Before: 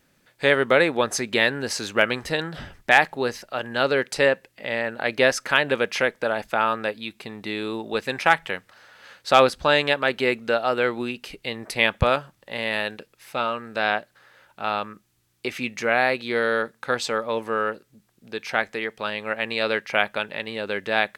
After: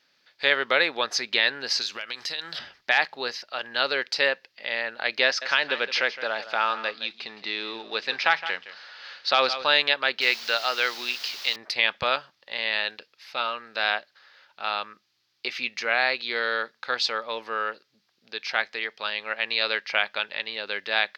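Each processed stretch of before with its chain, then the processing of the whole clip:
1.81–2.59 s: peaking EQ 10 kHz +13.5 dB 2.6 oct + compression 8:1, threshold -28 dBFS
5.25–9.66 s: companding laws mixed up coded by mu + band-pass 110–6100 Hz + delay 165 ms -14 dB
10.21–11.56 s: high-pass 50 Hz + tilt EQ +2.5 dB/octave + word length cut 6-bit, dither triangular
whole clip: high-pass 1.2 kHz 6 dB/octave; resonant high shelf 6.5 kHz -12 dB, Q 3; loudness maximiser +5.5 dB; trim -5.5 dB

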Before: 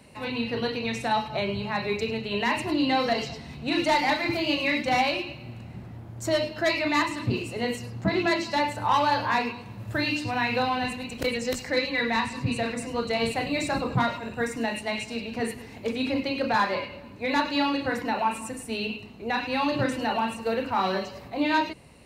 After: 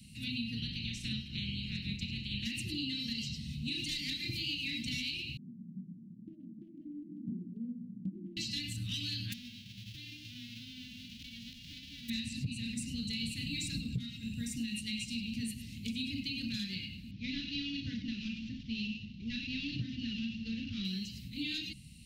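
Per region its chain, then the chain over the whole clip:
0.58–2.45 s: spectral peaks clipped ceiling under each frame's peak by 22 dB + low-pass 1.5 kHz 6 dB/octave
5.37–8.37 s: Chebyshev band-pass 170–740 Hz, order 4 + compression 3:1, threshold -30 dBFS
9.32–12.08 s: formants flattened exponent 0.1 + compression, threshold -34 dBFS + distance through air 280 m
17.11–20.85 s: CVSD coder 32 kbps + Bessel low-pass 3.2 kHz, order 4
whole clip: Chebyshev band-stop 210–3000 Hz, order 3; compression, threshold -36 dBFS; trim +2 dB

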